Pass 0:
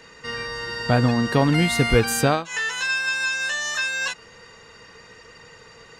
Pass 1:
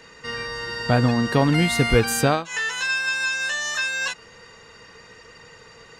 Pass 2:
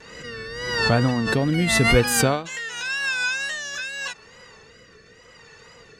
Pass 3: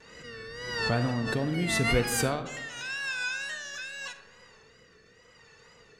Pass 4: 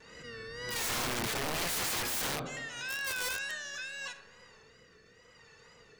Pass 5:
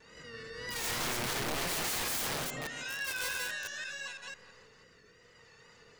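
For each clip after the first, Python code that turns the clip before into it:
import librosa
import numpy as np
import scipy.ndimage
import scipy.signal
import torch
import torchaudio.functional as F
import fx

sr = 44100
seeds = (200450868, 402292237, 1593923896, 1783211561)

y1 = x
y2 = fx.wow_flutter(y1, sr, seeds[0], rate_hz=2.1, depth_cents=92.0)
y2 = fx.rotary(y2, sr, hz=0.85)
y2 = fx.pre_swell(y2, sr, db_per_s=46.0)
y3 = fx.rev_freeverb(y2, sr, rt60_s=1.4, hf_ratio=0.35, predelay_ms=5, drr_db=9.5)
y3 = F.gain(torch.from_numpy(y3), -8.5).numpy()
y4 = (np.mod(10.0 ** (26.5 / 20.0) * y3 + 1.0, 2.0) - 1.0) / 10.0 ** (26.5 / 20.0)
y4 = F.gain(torch.from_numpy(y4), -2.0).numpy()
y5 = fx.reverse_delay(y4, sr, ms=167, wet_db=-1)
y5 = F.gain(torch.from_numpy(y5), -3.0).numpy()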